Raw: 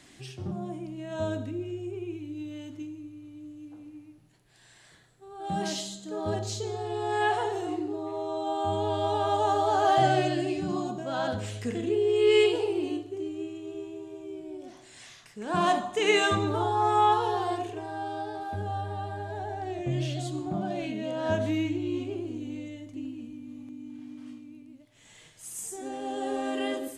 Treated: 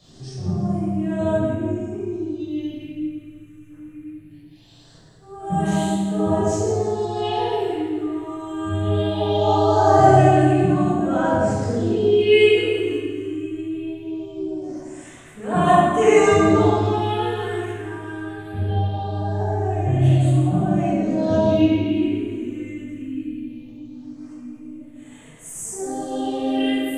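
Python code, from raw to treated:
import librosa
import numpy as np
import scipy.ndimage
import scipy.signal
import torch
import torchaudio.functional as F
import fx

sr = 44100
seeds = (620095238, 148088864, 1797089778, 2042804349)

p1 = fx.phaser_stages(x, sr, stages=4, low_hz=710.0, high_hz=5000.0, hz=0.21, feedback_pct=25)
p2 = p1 + fx.echo_split(p1, sr, split_hz=610.0, low_ms=81, high_ms=166, feedback_pct=52, wet_db=-11.0, dry=0)
p3 = fx.room_shoebox(p2, sr, seeds[0], volume_m3=880.0, walls='mixed', distance_m=6.1)
y = p3 * 10.0 ** (-2.0 / 20.0)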